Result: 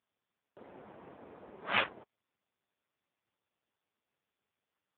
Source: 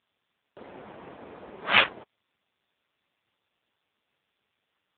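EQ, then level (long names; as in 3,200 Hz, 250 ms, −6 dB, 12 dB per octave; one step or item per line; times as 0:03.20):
high-pass filter 50 Hz
high-shelf EQ 2,800 Hz −10 dB
−7.0 dB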